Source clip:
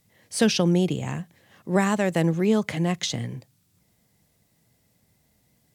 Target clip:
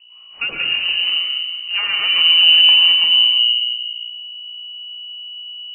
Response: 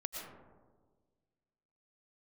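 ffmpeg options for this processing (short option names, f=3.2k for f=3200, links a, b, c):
-filter_complex "[0:a]aeval=exprs='val(0)+0.00562*(sin(2*PI*60*n/s)+sin(2*PI*2*60*n/s)/2+sin(2*PI*3*60*n/s)/3+sin(2*PI*4*60*n/s)/4+sin(2*PI*5*60*n/s)/5)':c=same,asplit=2[a][b];[b]aeval=exprs='(mod(11.2*val(0)+1,2)-1)/11.2':c=same,volume=-10.5dB[c];[a][c]amix=inputs=2:normalize=0,asubboost=boost=9.5:cutoff=140[d];[1:a]atrim=start_sample=2205[e];[d][e]afir=irnorm=-1:irlink=0,lowpass=f=2.6k:t=q:w=0.5098,lowpass=f=2.6k:t=q:w=0.6013,lowpass=f=2.6k:t=q:w=0.9,lowpass=f=2.6k:t=q:w=2.563,afreqshift=-3000"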